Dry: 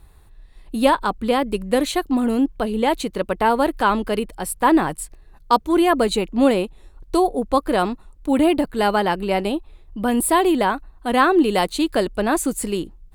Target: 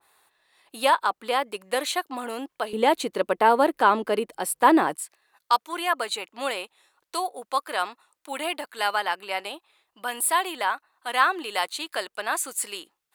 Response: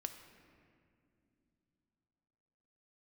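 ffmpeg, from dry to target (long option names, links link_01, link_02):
-af "asetnsamples=nb_out_samples=441:pad=0,asendcmd='2.73 highpass f 340;4.96 highpass f 1100',highpass=750,adynamicequalizer=threshold=0.0178:dfrequency=2100:dqfactor=0.7:tfrequency=2100:tqfactor=0.7:attack=5:release=100:ratio=0.375:range=2.5:mode=cutabove:tftype=highshelf"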